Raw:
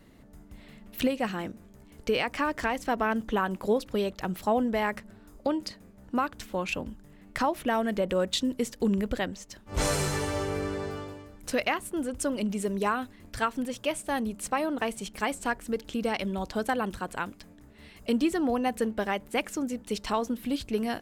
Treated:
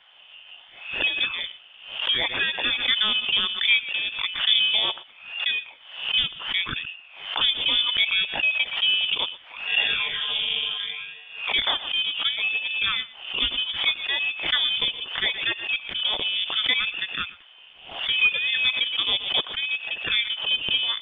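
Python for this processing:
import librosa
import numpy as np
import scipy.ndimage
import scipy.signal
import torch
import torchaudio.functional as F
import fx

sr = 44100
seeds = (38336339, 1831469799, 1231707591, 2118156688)

p1 = fx.peak_eq(x, sr, hz=260.0, db=2.5, octaves=0.85)
p2 = np.repeat(scipy.signal.resample_poly(p1, 1, 8), 8)[:len(p1)]
p3 = p2 * np.sin(2.0 * np.pi * 700.0 * np.arange(len(p2)) / sr)
p4 = fx.phaser_stages(p3, sr, stages=12, low_hz=380.0, high_hz=1800.0, hz=0.69, feedback_pct=30)
p5 = fx.schmitt(p4, sr, flips_db=-30.5)
p6 = p4 + (p5 * librosa.db_to_amplitude(-9.0))
p7 = fx.freq_invert(p6, sr, carrier_hz=3500)
p8 = p7 + fx.echo_single(p7, sr, ms=119, db=-19.5, dry=0)
p9 = fx.dmg_noise_band(p8, sr, seeds[0], low_hz=590.0, high_hz=2600.0, level_db=-70.0)
p10 = fx.pre_swell(p9, sr, db_per_s=89.0)
y = p10 * librosa.db_to_amplitude(7.5)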